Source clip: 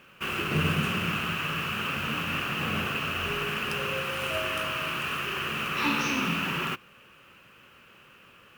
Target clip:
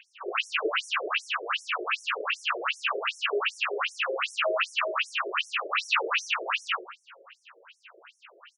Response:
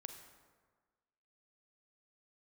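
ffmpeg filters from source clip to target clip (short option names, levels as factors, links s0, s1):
-filter_complex "[0:a]aecho=1:1:39|63:0.562|0.631,asplit=2[s0][s1];[1:a]atrim=start_sample=2205,lowpass=6100[s2];[s1][s2]afir=irnorm=-1:irlink=0,volume=1.58[s3];[s0][s3]amix=inputs=2:normalize=0,afftfilt=real='re*between(b*sr/1024,460*pow(7800/460,0.5+0.5*sin(2*PI*2.6*pts/sr))/1.41,460*pow(7800/460,0.5+0.5*sin(2*PI*2.6*pts/sr))*1.41)':imag='im*between(b*sr/1024,460*pow(7800/460,0.5+0.5*sin(2*PI*2.6*pts/sr))/1.41,460*pow(7800/460,0.5+0.5*sin(2*PI*2.6*pts/sr))*1.41)':win_size=1024:overlap=0.75,volume=1.26"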